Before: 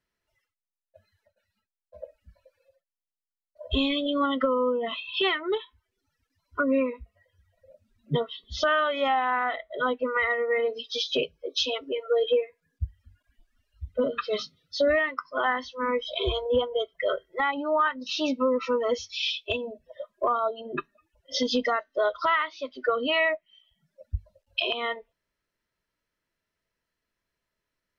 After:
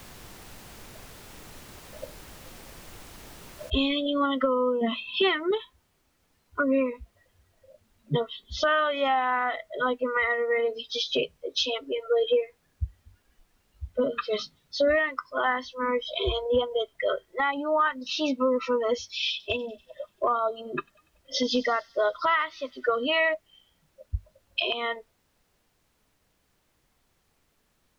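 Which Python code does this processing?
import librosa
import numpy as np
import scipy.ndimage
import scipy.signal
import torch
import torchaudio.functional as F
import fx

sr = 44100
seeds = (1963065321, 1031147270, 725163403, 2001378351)

y = fx.noise_floor_step(x, sr, seeds[0], at_s=3.7, before_db=-46, after_db=-70, tilt_db=3.0)
y = fx.peak_eq(y, sr, hz=230.0, db=14.0, octaves=0.77, at=(4.81, 5.51))
y = fx.echo_wet_highpass(y, sr, ms=96, feedback_pct=63, hz=5100.0, wet_db=-13.0, at=(19.3, 23.34))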